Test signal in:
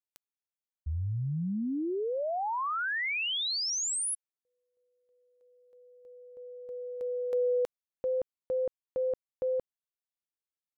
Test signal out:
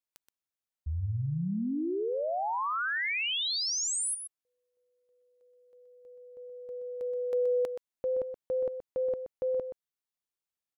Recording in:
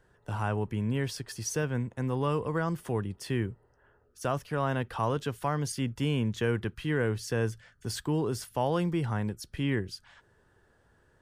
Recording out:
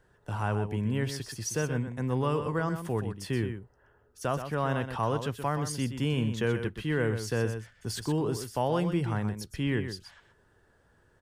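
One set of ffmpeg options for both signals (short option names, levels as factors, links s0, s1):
-af "aecho=1:1:125:0.355"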